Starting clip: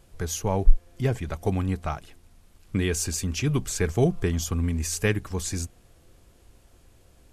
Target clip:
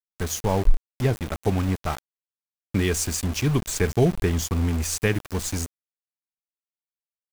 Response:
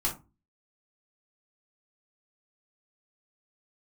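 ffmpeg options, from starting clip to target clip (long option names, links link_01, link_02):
-af "aeval=exprs='val(0)*gte(abs(val(0)),0.0266)':channel_layout=same,alimiter=level_in=9dB:limit=-1dB:release=50:level=0:latency=1,volume=-6.5dB"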